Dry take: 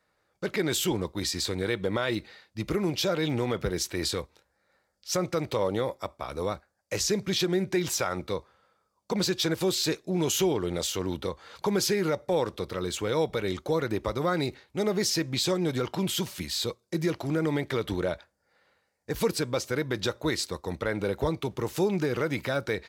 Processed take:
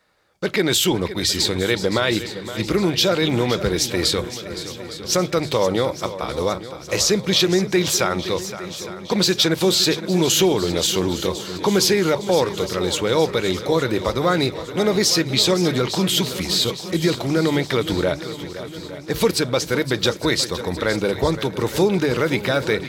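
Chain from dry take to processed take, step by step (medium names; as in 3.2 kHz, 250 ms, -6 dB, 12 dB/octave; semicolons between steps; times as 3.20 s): peaking EQ 3.6 kHz +4 dB 1.1 oct; hum notches 50/100/150 Hz; on a send: shuffle delay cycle 861 ms, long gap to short 1.5:1, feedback 53%, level -13 dB; on the sum: trim +8 dB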